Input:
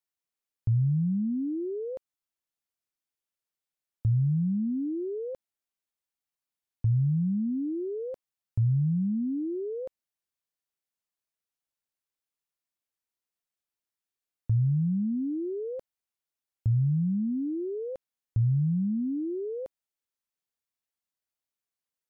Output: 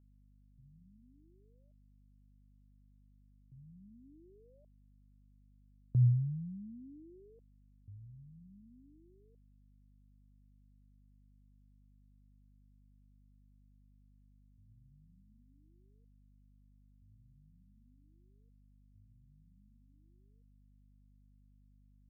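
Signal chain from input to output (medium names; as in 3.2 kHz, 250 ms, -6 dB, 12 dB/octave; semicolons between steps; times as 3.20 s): Doppler pass-by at 6.04 s, 45 m/s, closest 3.2 m; level-controlled noise filter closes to 360 Hz, open at -36.5 dBFS; hum 50 Hz, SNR 20 dB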